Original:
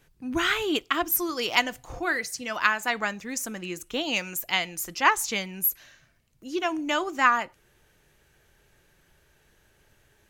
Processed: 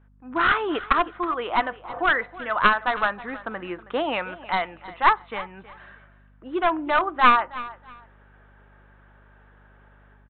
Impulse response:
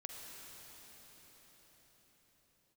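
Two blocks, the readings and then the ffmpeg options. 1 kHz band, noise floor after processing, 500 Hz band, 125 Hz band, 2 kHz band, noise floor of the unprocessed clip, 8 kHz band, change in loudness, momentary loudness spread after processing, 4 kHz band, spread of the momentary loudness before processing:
+6.5 dB, -54 dBFS, +4.0 dB, +0.5 dB, +2.0 dB, -64 dBFS, under -40 dB, +2.5 dB, 15 LU, -4.0 dB, 10 LU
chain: -af "highshelf=f=1.8k:t=q:w=1.5:g=-12,dynaudnorm=f=230:g=3:m=12dB,bandpass=f=1.8k:t=q:w=0.56:csg=0,aresample=8000,aeval=exprs='clip(val(0),-1,0.141)':c=same,aresample=44100,aeval=exprs='val(0)+0.00178*(sin(2*PI*50*n/s)+sin(2*PI*2*50*n/s)/2+sin(2*PI*3*50*n/s)/3+sin(2*PI*4*50*n/s)/4+sin(2*PI*5*50*n/s)/5)':c=same,aecho=1:1:320|640:0.133|0.0307"

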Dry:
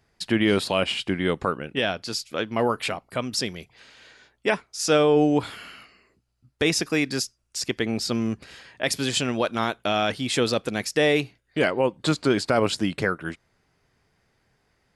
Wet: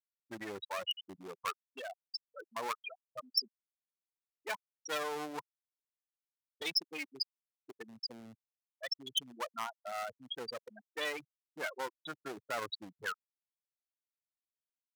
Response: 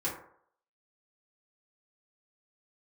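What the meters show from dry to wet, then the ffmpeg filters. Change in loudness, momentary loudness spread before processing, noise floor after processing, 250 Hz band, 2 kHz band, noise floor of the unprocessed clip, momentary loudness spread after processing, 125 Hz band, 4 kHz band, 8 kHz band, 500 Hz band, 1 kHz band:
-15.5 dB, 9 LU, under -85 dBFS, -26.5 dB, -14.5 dB, -70 dBFS, 14 LU, -31.0 dB, -10.5 dB, -18.0 dB, -20.5 dB, -13.0 dB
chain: -filter_complex "[0:a]equalizer=f=100:t=o:w=0.67:g=6,equalizer=f=1k:t=o:w=0.67:g=7,equalizer=f=4k:t=o:w=0.67:g=3,asplit=2[a][b];[b]aecho=0:1:478|956|1434:0.0891|0.0365|0.015[c];[a][c]amix=inputs=2:normalize=0,afftfilt=real='re*gte(hypot(re,im),0.316)':imag='im*gte(hypot(re,im),0.316)':win_size=1024:overlap=0.75,aeval=exprs='clip(val(0),-1,0.0668)':c=same,aderivative,volume=4dB"

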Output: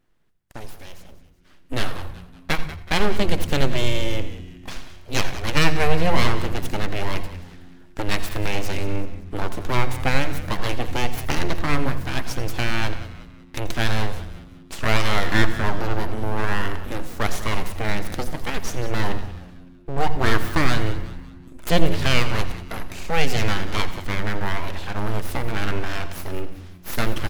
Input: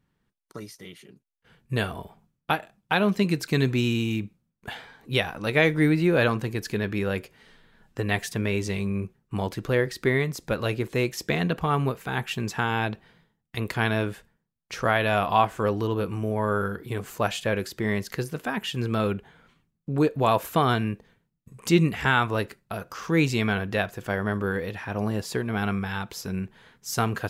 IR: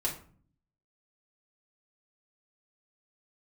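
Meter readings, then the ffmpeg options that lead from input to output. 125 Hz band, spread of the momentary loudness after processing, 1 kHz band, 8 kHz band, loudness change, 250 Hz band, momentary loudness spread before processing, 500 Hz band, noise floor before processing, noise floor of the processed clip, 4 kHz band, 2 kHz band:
+1.5 dB, 17 LU, +0.5 dB, +4.5 dB, +0.5 dB, -2.0 dB, 15 LU, -1.5 dB, -78 dBFS, -46 dBFS, +5.0 dB, +2.0 dB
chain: -filter_complex "[0:a]aeval=exprs='abs(val(0))':c=same,asplit=5[a][b][c][d][e];[b]adelay=187,afreqshift=-89,volume=-14.5dB[f];[c]adelay=374,afreqshift=-178,volume=-21.8dB[g];[d]adelay=561,afreqshift=-267,volume=-29.2dB[h];[e]adelay=748,afreqshift=-356,volume=-36.5dB[i];[a][f][g][h][i]amix=inputs=5:normalize=0,asplit=2[j][k];[1:a]atrim=start_sample=2205,lowshelf=f=140:g=12,adelay=82[l];[k][l]afir=irnorm=-1:irlink=0,volume=-18.5dB[m];[j][m]amix=inputs=2:normalize=0,volume=4dB"

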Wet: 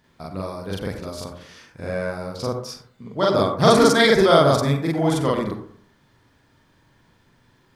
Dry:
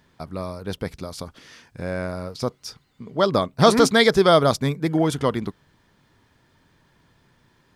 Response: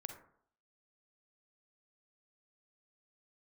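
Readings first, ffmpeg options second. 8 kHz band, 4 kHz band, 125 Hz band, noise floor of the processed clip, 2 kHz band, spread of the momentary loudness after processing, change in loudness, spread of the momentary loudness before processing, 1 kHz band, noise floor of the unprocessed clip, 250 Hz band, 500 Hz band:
+1.0 dB, +0.5 dB, +2.0 dB, -60 dBFS, +1.5 dB, 21 LU, +1.5 dB, 20 LU, +1.5 dB, -62 dBFS, +1.0 dB, +1.5 dB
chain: -filter_complex "[0:a]asplit=2[a][b];[1:a]atrim=start_sample=2205,adelay=42[c];[b][c]afir=irnorm=-1:irlink=0,volume=6.5dB[d];[a][d]amix=inputs=2:normalize=0,volume=-3.5dB"

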